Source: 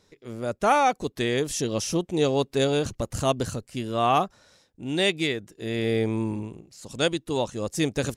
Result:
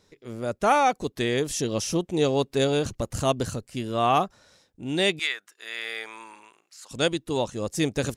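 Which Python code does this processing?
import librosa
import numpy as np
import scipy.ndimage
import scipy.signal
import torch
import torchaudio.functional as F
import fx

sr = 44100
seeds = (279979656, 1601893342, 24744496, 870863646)

y = fx.highpass_res(x, sr, hz=1300.0, q=1.9, at=(5.19, 6.91))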